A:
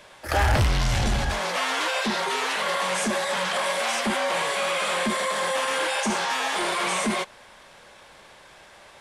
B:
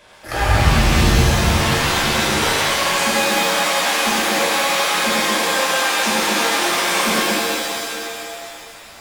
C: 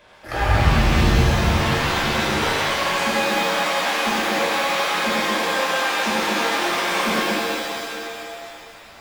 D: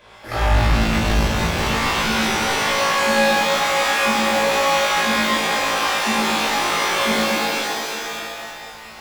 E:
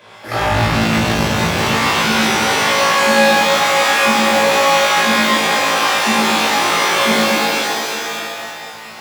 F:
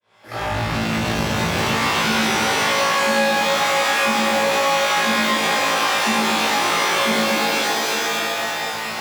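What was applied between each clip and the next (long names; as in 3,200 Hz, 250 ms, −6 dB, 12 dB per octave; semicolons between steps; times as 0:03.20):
reverb with rising layers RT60 2.4 s, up +7 semitones, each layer −2 dB, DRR −5 dB; level −1.5 dB
parametric band 10,000 Hz −9.5 dB 1.7 octaves; level −2 dB
soft clipping −20 dBFS, distortion −9 dB; on a send: flutter between parallel walls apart 3.1 metres, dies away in 0.49 s; on the sum: level +1.5 dB
high-pass filter 88 Hz 24 dB per octave; level +5 dB
fade in at the beginning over 2.19 s; downward compressor 3 to 1, threshold −27 dBFS, peak gain reduction 14 dB; level +7 dB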